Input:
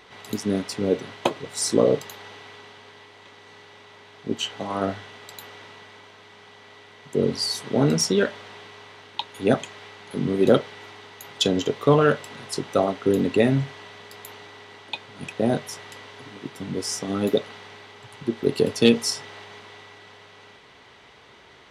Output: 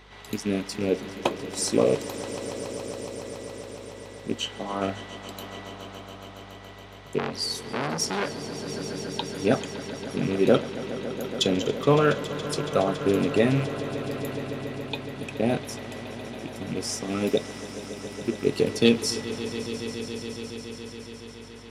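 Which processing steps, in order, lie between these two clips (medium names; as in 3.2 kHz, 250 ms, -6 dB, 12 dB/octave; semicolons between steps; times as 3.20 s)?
rattle on loud lows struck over -27 dBFS, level -25 dBFS; echo with a slow build-up 140 ms, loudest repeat 5, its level -16.5 dB; hum 50 Hz, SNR 27 dB; 7.18–8.68 s: transformer saturation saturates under 1.9 kHz; trim -2.5 dB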